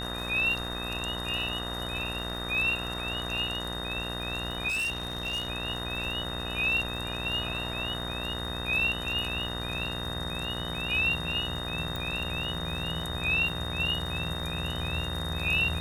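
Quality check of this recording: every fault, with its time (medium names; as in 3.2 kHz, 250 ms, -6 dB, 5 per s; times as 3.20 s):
buzz 60 Hz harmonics 33 -37 dBFS
crackle 58 per s -38 dBFS
whine 3.7 kHz -36 dBFS
4.68–5.48 s: clipped -27.5 dBFS
11.96 s: pop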